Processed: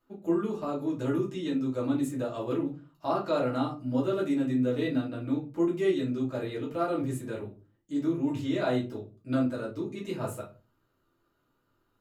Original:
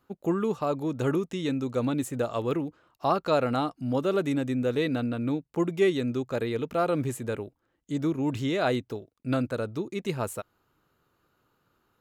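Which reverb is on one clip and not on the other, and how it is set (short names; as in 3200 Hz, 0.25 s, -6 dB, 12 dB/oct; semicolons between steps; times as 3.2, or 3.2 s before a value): shoebox room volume 130 m³, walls furnished, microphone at 2.7 m; gain -11 dB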